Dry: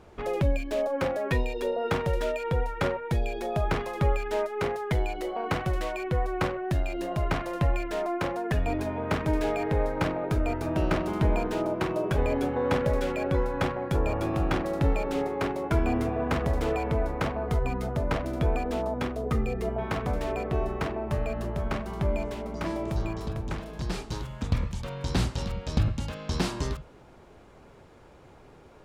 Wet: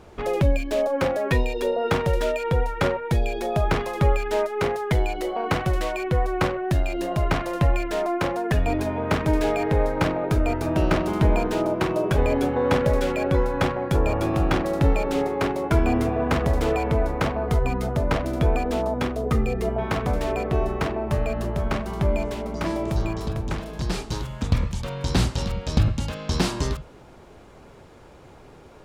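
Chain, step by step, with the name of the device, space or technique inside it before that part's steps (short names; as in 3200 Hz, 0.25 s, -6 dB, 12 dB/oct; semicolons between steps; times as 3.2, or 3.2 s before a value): exciter from parts (in parallel at -11.5 dB: HPF 2500 Hz + soft clip -33.5 dBFS, distortion -14 dB); on the sum: gain +5 dB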